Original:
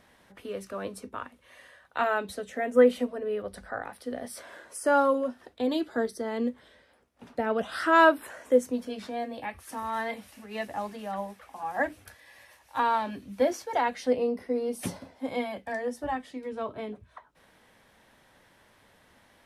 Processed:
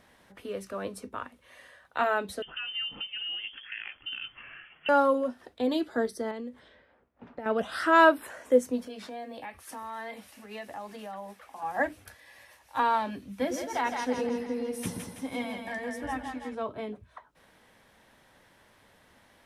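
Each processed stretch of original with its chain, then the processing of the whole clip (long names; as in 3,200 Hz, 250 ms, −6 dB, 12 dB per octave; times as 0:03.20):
0:02.42–0:04.89: one scale factor per block 5 bits + downward compressor, threshold −32 dBFS + voice inversion scrambler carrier 3,300 Hz
0:06.31–0:07.46: low-pass that shuts in the quiet parts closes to 1,700 Hz, open at −27.5 dBFS + downward compressor 10 to 1, threshold −34 dBFS
0:08.87–0:11.62: floating-point word with a short mantissa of 6 bits + low-shelf EQ 180 Hz −8 dB + downward compressor 2.5 to 1, threshold −38 dBFS
0:13.32–0:16.55: parametric band 570 Hz −8.5 dB 0.94 octaves + notch filter 4,500 Hz, Q 13 + echo with a time of its own for lows and highs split 550 Hz, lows 107 ms, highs 164 ms, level −5 dB
whole clip: no processing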